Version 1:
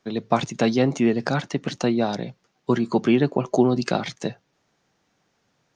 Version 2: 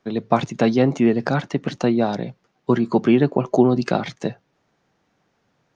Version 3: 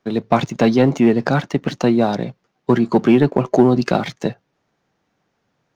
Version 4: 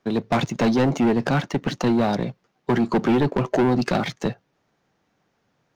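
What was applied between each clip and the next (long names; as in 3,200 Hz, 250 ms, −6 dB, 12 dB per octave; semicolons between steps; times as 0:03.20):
high-shelf EQ 3,700 Hz −10 dB; level +3 dB
leveller curve on the samples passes 1
soft clipping −14.5 dBFS, distortion −9 dB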